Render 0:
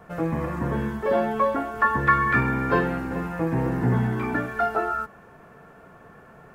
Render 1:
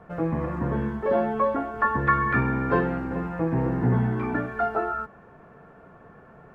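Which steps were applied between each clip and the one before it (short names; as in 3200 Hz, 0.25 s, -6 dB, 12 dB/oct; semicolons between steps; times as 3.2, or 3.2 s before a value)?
LPF 1500 Hz 6 dB/oct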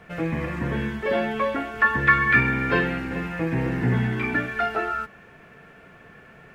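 resonant high shelf 1600 Hz +13 dB, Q 1.5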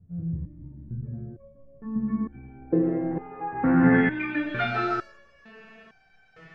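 digital reverb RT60 1.1 s, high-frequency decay 0.25×, pre-delay 65 ms, DRR 5 dB; low-pass sweep 120 Hz -> 5100 Hz, 1.53–4.91; stepped resonator 2.2 Hz 87–770 Hz; gain +8.5 dB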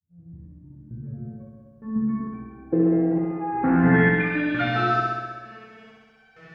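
opening faded in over 1.29 s; HPF 46 Hz; on a send: flutter echo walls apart 11 m, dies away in 1.4 s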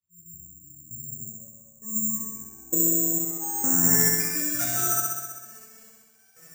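careless resampling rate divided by 6×, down none, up zero stuff; gain -10.5 dB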